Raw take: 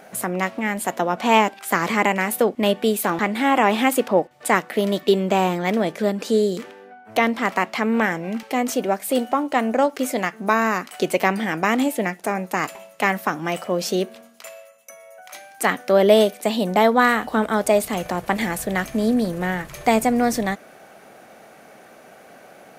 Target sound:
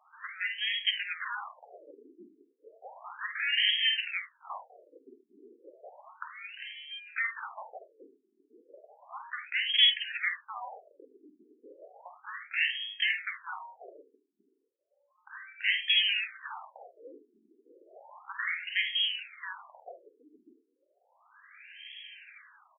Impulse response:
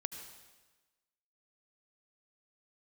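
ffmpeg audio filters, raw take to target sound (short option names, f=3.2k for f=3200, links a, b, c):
-af "equalizer=f=210:t=o:w=0.5:g=11.5,alimiter=limit=-6.5dB:level=0:latency=1:release=135,acontrast=26,aeval=exprs='0.708*sin(PI/2*1.78*val(0)/0.708)':c=same,flanger=delay=6.7:depth=5.7:regen=-63:speed=0.15:shape=triangular,aecho=1:1:49|50|74|103:0.335|0.224|0.224|0.112,lowpass=f=3.3k:t=q:w=0.5098,lowpass=f=3.3k:t=q:w=0.6013,lowpass=f=3.3k:t=q:w=0.9,lowpass=f=3.3k:t=q:w=2.563,afreqshift=-3900,afftfilt=real='re*between(b*sr/1024,300*pow(2400/300,0.5+0.5*sin(2*PI*0.33*pts/sr))/1.41,300*pow(2400/300,0.5+0.5*sin(2*PI*0.33*pts/sr))*1.41)':imag='im*between(b*sr/1024,300*pow(2400/300,0.5+0.5*sin(2*PI*0.33*pts/sr))/1.41,300*pow(2400/300,0.5+0.5*sin(2*PI*0.33*pts/sr))*1.41)':win_size=1024:overlap=0.75,volume=-8.5dB"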